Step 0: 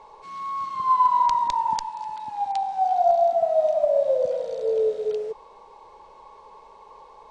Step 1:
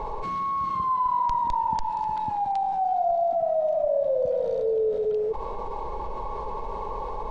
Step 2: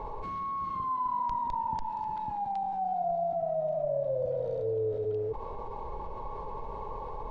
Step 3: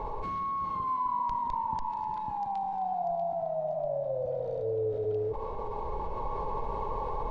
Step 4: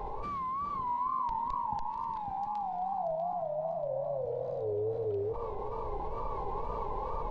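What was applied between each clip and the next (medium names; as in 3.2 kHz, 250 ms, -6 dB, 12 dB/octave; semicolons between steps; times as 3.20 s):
tilt EQ -3.5 dB/octave; level flattener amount 70%; trim -8 dB
octave divider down 2 oct, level -3 dB; treble shelf 4.4 kHz -8 dB; trim -6.5 dB
gain riding within 5 dB 2 s; thinning echo 641 ms, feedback 46%, high-pass 520 Hz, level -10 dB
feedback echo behind a low-pass 659 ms, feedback 61%, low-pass 3.1 kHz, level -15 dB; wow and flutter 110 cents; trim -2.5 dB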